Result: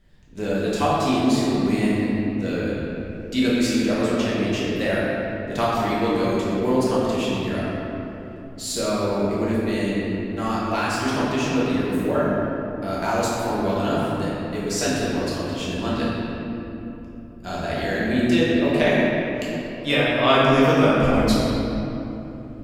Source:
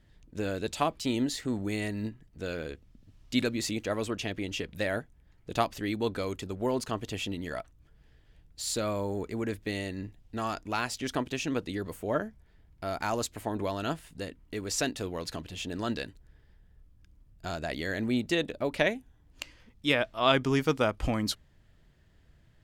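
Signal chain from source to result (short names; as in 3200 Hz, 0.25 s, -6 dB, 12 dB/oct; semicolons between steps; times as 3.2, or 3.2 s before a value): shoebox room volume 170 m³, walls hard, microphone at 1.2 m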